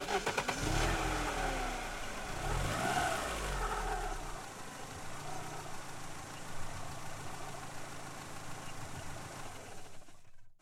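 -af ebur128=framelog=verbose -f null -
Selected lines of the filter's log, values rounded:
Integrated loudness:
  I:         -39.1 LUFS
  Threshold: -49.4 LUFS
Loudness range:
  LRA:        10.2 LU
  Threshold: -60.0 LUFS
  LRA low:   -46.0 LUFS
  LRA high:  -35.8 LUFS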